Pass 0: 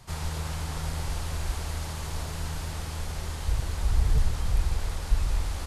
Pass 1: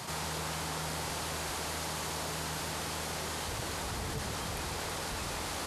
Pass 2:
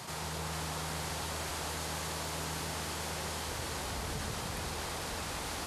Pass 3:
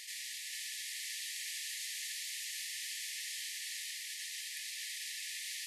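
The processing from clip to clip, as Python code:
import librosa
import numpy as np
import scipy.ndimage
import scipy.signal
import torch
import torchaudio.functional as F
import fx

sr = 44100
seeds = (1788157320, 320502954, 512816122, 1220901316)

y1 = scipy.signal.sosfilt(scipy.signal.butter(2, 200.0, 'highpass', fs=sr, output='sos'), x)
y1 = fx.env_flatten(y1, sr, amount_pct=70)
y1 = F.gain(torch.from_numpy(y1), -1.5).numpy()
y2 = fx.echo_split(y1, sr, split_hz=950.0, low_ms=126, high_ms=445, feedback_pct=52, wet_db=-4.5)
y2 = F.gain(torch.from_numpy(y2), -3.0).numpy()
y3 = fx.brickwall_highpass(y2, sr, low_hz=1700.0)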